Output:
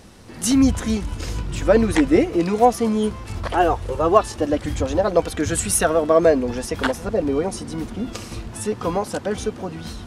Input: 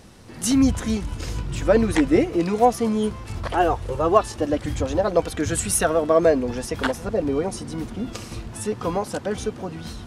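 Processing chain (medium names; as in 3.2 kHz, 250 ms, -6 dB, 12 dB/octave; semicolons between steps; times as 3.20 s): peaking EQ 130 Hz -6.5 dB 0.22 oct; trim +2 dB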